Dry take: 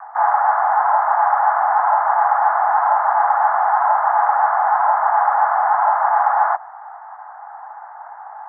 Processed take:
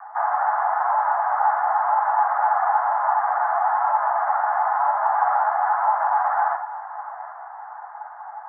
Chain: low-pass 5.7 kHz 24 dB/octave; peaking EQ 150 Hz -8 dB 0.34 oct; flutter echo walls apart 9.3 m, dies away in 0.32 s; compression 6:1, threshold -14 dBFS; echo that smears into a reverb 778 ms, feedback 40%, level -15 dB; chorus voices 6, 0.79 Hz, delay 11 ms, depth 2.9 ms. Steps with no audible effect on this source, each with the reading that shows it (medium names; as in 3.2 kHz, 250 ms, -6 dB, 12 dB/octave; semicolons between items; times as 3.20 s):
low-pass 5.7 kHz: input has nothing above 1.8 kHz; peaking EQ 150 Hz: input has nothing below 570 Hz